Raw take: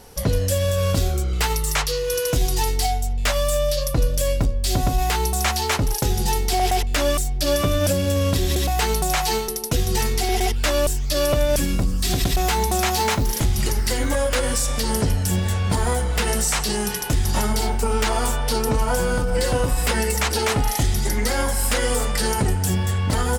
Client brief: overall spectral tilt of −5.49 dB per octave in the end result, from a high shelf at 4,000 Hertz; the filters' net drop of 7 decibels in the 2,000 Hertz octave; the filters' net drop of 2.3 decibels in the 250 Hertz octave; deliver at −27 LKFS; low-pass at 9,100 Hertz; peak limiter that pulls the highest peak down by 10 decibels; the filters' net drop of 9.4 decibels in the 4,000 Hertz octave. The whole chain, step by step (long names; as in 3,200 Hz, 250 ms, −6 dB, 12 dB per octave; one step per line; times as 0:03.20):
low-pass filter 9,100 Hz
parametric band 250 Hz −3 dB
parametric band 2,000 Hz −6 dB
high-shelf EQ 4,000 Hz −7.5 dB
parametric band 4,000 Hz −5.5 dB
level +2.5 dB
brickwall limiter −18.5 dBFS